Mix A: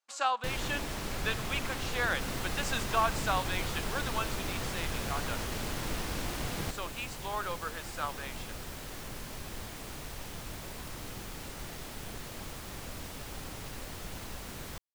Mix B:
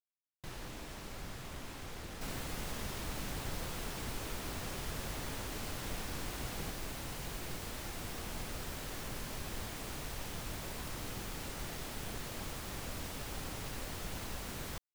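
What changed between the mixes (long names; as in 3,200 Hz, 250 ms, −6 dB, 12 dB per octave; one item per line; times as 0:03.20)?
speech: muted
first sound −9.5 dB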